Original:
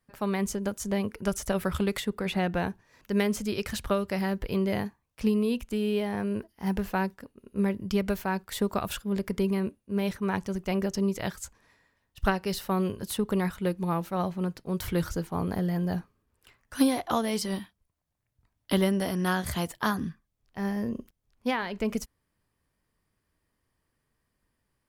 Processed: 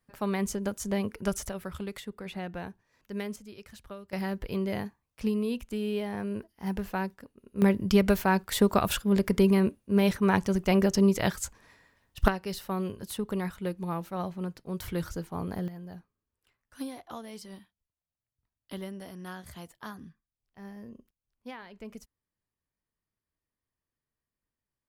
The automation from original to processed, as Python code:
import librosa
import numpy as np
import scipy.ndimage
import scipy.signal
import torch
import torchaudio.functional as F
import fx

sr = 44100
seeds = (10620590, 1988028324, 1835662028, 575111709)

y = fx.gain(x, sr, db=fx.steps((0.0, -1.0), (1.49, -9.5), (3.36, -16.5), (4.13, -3.5), (7.62, 5.0), (12.28, -4.5), (15.68, -14.5)))